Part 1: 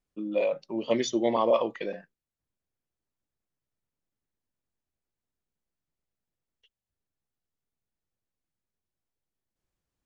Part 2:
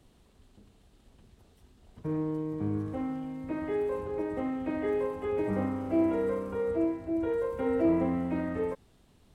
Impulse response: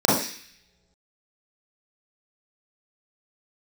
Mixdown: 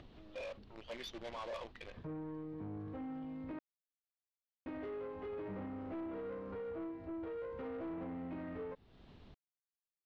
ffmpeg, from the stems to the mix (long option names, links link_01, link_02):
-filter_complex "[0:a]highpass=frequency=1400:poles=1,acrusher=bits=7:dc=4:mix=0:aa=0.000001,volume=-8dB[link_01];[1:a]acompressor=threshold=-41dB:ratio=2.5,volume=-1dB,asplit=3[link_02][link_03][link_04];[link_02]atrim=end=3.59,asetpts=PTS-STARTPTS,afade=type=out:start_time=3.586:duration=0.004:curve=hsin[link_05];[link_03]atrim=start=3.59:end=4.66,asetpts=PTS-STARTPTS,volume=0[link_06];[link_04]atrim=start=4.66,asetpts=PTS-STARTPTS,afade=type=in:duration=0.004:curve=hsin[link_07];[link_05][link_06][link_07]concat=n=3:v=0:a=1[link_08];[link_01][link_08]amix=inputs=2:normalize=0,lowpass=frequency=4300:width=0.5412,lowpass=frequency=4300:width=1.3066,acompressor=mode=upward:threshold=-50dB:ratio=2.5,asoftclip=type=tanh:threshold=-39dB"